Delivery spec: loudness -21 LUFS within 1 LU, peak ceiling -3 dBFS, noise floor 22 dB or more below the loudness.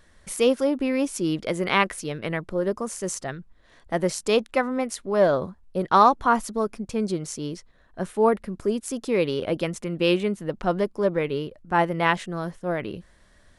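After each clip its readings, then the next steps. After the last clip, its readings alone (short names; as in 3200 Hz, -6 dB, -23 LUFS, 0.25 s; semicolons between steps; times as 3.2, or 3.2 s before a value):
loudness -25.0 LUFS; peak -5.0 dBFS; loudness target -21.0 LUFS
-> gain +4 dB; limiter -3 dBFS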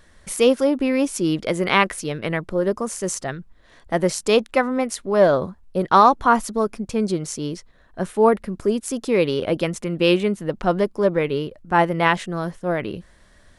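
loudness -21.0 LUFS; peak -3.0 dBFS; noise floor -53 dBFS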